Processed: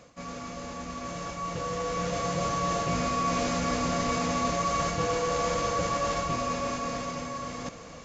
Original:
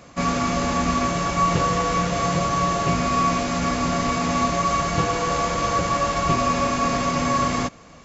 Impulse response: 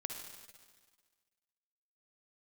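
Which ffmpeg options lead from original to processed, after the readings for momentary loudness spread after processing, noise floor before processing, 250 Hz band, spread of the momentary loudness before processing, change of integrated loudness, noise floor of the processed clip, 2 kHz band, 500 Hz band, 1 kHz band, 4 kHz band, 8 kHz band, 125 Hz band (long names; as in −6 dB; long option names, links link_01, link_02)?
11 LU, −46 dBFS, −9.0 dB, 2 LU, −8.0 dB, −44 dBFS, −8.0 dB, −5.0 dB, −8.5 dB, −7.0 dB, can't be measured, −9.0 dB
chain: -af "equalizer=frequency=490:width=4.3:gain=7.5,areverse,acompressor=threshold=-37dB:ratio=8,areverse,bandreject=frequency=390:width=12,dynaudnorm=framelen=330:gausssize=11:maxgain=11dB,highshelf=frequency=6200:gain=6" -ar 16000 -c:a pcm_alaw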